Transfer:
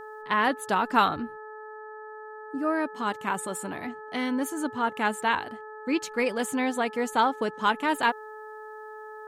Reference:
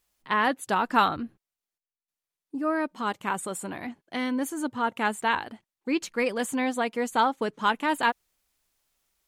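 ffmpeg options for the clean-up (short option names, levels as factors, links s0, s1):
-af "bandreject=f=430.7:t=h:w=4,bandreject=f=861.4:t=h:w=4,bandreject=f=1292.1:t=h:w=4,bandreject=f=1722.8:t=h:w=4"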